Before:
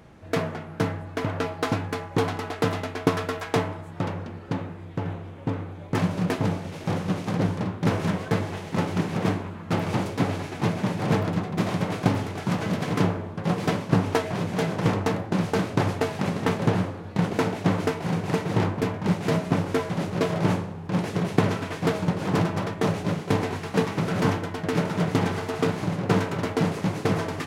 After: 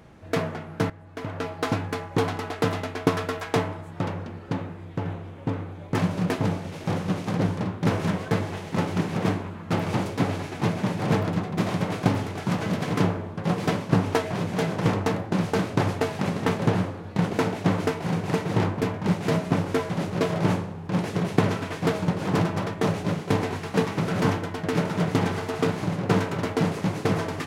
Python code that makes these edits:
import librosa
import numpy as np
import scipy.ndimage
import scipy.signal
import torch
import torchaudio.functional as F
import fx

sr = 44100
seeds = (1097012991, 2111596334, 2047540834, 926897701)

y = fx.edit(x, sr, fx.fade_in_from(start_s=0.9, length_s=0.81, floor_db=-16.0), tone=tone)